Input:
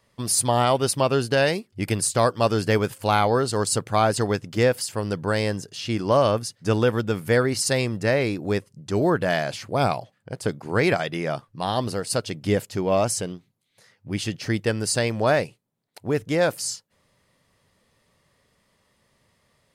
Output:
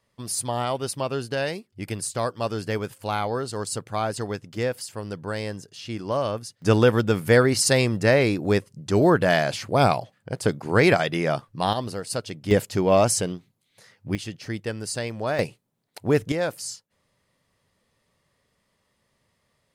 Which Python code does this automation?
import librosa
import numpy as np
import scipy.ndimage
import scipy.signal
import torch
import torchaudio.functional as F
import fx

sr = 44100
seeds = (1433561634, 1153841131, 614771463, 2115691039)

y = fx.gain(x, sr, db=fx.steps((0.0, -6.5), (6.62, 3.0), (11.73, -4.0), (12.51, 3.0), (14.15, -6.5), (15.39, 3.5), (16.32, -5.0)))